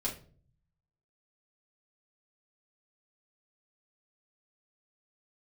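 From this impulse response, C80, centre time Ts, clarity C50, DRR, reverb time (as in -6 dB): 15.0 dB, 20 ms, 10.0 dB, -5.0 dB, no single decay rate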